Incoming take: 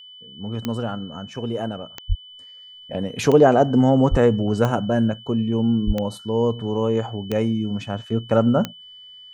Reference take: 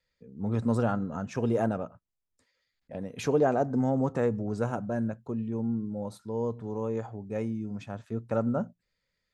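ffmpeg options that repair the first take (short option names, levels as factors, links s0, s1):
-filter_complex "[0:a]adeclick=t=4,bandreject=f=3000:w=30,asplit=3[s0][s1][s2];[s0]afade=t=out:st=2.08:d=0.02[s3];[s1]highpass=f=140:w=0.5412,highpass=f=140:w=1.3066,afade=t=in:st=2.08:d=0.02,afade=t=out:st=2.2:d=0.02[s4];[s2]afade=t=in:st=2.2:d=0.02[s5];[s3][s4][s5]amix=inputs=3:normalize=0,asplit=3[s6][s7][s8];[s6]afade=t=out:st=4.1:d=0.02[s9];[s7]highpass=f=140:w=0.5412,highpass=f=140:w=1.3066,afade=t=in:st=4.1:d=0.02,afade=t=out:st=4.22:d=0.02[s10];[s8]afade=t=in:st=4.22:d=0.02[s11];[s9][s10][s11]amix=inputs=3:normalize=0,asplit=3[s12][s13][s14];[s12]afade=t=out:st=5.86:d=0.02[s15];[s13]highpass=f=140:w=0.5412,highpass=f=140:w=1.3066,afade=t=in:st=5.86:d=0.02,afade=t=out:st=5.98:d=0.02[s16];[s14]afade=t=in:st=5.98:d=0.02[s17];[s15][s16][s17]amix=inputs=3:normalize=0,asetnsamples=n=441:p=0,asendcmd='2.3 volume volume -10.5dB',volume=1"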